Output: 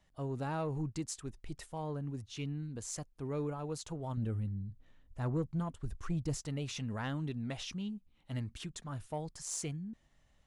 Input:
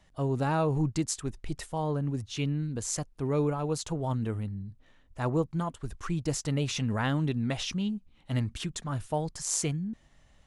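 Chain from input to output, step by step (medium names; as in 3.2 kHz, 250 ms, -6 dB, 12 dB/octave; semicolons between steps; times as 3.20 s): 4.17–6.42 s: bass shelf 240 Hz +9 dB; saturation -17 dBFS, distortion -21 dB; trim -8.5 dB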